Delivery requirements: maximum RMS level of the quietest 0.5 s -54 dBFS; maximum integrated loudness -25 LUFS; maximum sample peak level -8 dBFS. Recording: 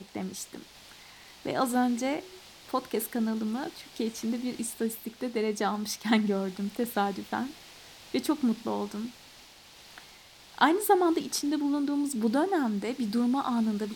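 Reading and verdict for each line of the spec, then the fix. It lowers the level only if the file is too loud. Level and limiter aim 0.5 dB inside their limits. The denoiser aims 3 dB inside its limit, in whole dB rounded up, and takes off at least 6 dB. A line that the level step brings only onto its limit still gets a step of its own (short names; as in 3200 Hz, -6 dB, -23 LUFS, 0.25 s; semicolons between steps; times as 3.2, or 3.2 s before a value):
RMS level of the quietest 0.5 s -53 dBFS: fail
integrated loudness -29.5 LUFS: OK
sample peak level -9.0 dBFS: OK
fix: denoiser 6 dB, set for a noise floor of -53 dBFS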